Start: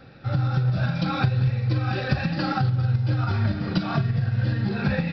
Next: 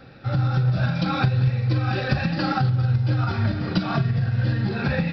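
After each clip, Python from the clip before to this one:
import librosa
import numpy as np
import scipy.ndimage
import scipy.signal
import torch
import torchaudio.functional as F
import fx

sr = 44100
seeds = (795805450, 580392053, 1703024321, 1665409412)

y = fx.hum_notches(x, sr, base_hz=50, count=4)
y = F.gain(torch.from_numpy(y), 2.0).numpy()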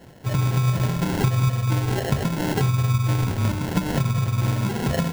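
y = fx.sample_hold(x, sr, seeds[0], rate_hz=1200.0, jitter_pct=0)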